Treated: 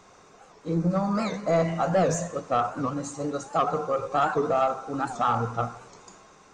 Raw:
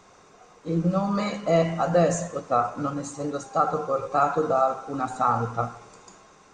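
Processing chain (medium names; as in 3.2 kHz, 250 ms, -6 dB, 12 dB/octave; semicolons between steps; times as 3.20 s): 0.73–1.68 s: peaking EQ 3 kHz -14.5 dB 0.23 oct; saturation -14.5 dBFS, distortion -17 dB; warped record 78 rpm, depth 160 cents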